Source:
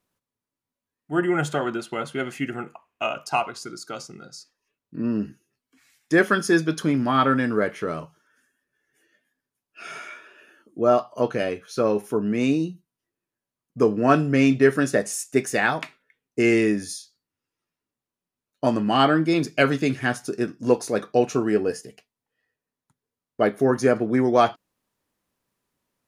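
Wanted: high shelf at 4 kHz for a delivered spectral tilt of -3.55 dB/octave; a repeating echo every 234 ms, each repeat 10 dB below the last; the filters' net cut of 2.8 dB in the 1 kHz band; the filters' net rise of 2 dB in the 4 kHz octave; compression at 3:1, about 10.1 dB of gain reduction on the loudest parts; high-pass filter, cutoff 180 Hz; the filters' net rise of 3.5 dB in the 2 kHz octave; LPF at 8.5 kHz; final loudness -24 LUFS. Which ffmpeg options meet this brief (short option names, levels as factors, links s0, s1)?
-af "highpass=180,lowpass=8500,equalizer=f=1000:t=o:g=-6.5,equalizer=f=2000:t=o:g=7.5,highshelf=f=4000:g=-8,equalizer=f=4000:t=o:g=4.5,acompressor=threshold=0.0501:ratio=3,aecho=1:1:234|468|702|936:0.316|0.101|0.0324|0.0104,volume=2"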